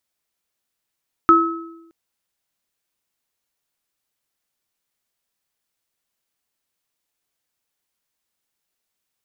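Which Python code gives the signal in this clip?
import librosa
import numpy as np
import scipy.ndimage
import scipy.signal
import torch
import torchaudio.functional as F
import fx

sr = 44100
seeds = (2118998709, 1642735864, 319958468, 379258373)

y = fx.additive_free(sr, length_s=0.62, hz=332.0, level_db=-12.5, upper_db=(6,), decay_s=1.01, upper_decays_s=(0.65,), upper_hz=(1290.0,))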